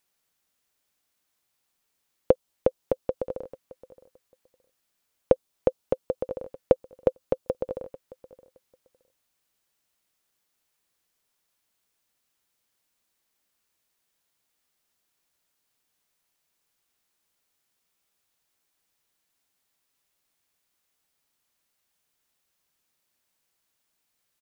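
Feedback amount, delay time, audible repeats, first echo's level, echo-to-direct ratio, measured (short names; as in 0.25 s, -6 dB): 17%, 0.619 s, 2, -19.0 dB, -19.0 dB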